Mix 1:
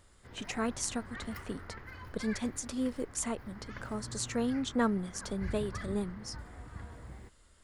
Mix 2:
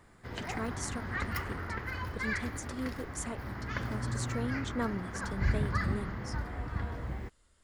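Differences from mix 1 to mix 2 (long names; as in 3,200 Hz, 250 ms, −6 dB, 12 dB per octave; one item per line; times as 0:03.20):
speech −5.0 dB
background +10.0 dB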